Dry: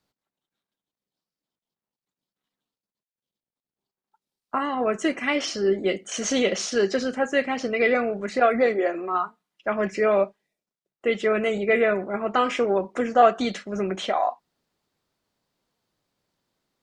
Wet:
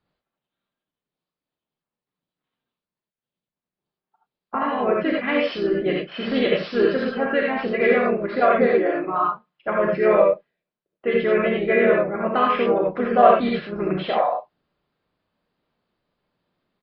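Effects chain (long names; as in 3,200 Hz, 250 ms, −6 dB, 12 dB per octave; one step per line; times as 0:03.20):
downsampling to 11,025 Hz
high-frequency loss of the air 240 metres
reverb whose tail is shaped and stops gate 110 ms rising, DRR −1.5 dB
pitch-shifted copies added −3 semitones −6 dB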